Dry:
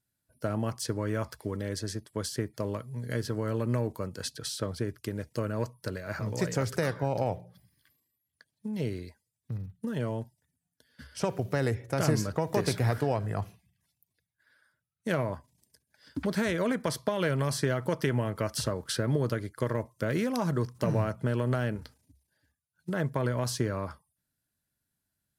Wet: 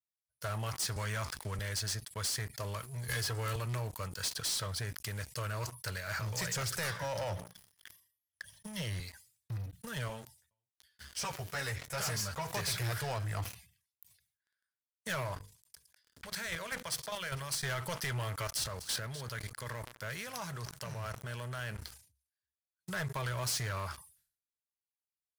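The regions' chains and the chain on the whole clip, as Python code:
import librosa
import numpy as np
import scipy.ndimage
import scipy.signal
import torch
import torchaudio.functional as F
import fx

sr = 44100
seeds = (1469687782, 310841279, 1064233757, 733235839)

y = fx.chain(x, sr, fx.lowpass(hz=12000.0, slope=12),
    fx.band_squash(depth_pct=70), at=(0.96, 1.59))
y = fx.chain(y, sr, fx.comb(ms=2.4, depth=0.88),
    fx.band_squash(depth_pct=70), at=(3.08, 3.56))
y = fx.chain(y, sr, fx.ripple_eq(per_octave=1.2, db=10),
    fx.band_squash(depth_pct=40), at=(6.99, 9.0))
y = fx.chain(y, sr, fx.echo_single(ms=428, db=-21.0),
    fx.ensemble(), at=(10.08, 12.47))
y = fx.chain(y, sr, fx.chopper(hz=5.0, depth_pct=65, duty_pct=15),
    fx.hum_notches(base_hz=50, count=10),
    fx.echo_wet_highpass(ms=112, feedback_pct=65, hz=3600.0, wet_db=-22.0), at=(15.32, 17.63))
y = fx.chain(y, sr, fx.level_steps(step_db=12),
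    fx.echo_single(ms=249, db=-19.5), at=(18.47, 21.79))
y = fx.tone_stack(y, sr, knobs='10-0-10')
y = fx.leveller(y, sr, passes=5)
y = fx.sustainer(y, sr, db_per_s=120.0)
y = y * 10.0 ** (-8.0 / 20.0)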